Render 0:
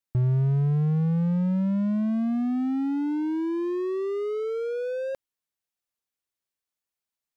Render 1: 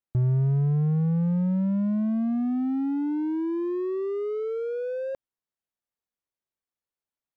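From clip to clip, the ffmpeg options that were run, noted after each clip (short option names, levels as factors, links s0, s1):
-af "highshelf=f=2100:g=-11.5"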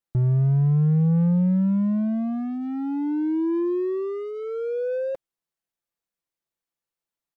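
-af "aecho=1:1:5.9:0.41,volume=1.19"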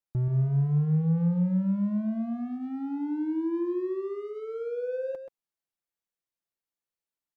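-af "aecho=1:1:130:0.376,volume=0.501"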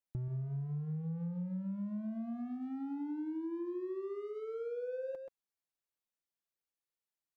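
-af "acompressor=threshold=0.0251:ratio=6,volume=0.596"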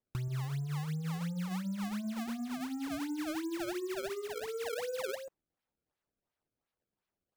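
-af "acrusher=samples=27:mix=1:aa=0.000001:lfo=1:lforange=43.2:lforate=2.8,volume=1.26"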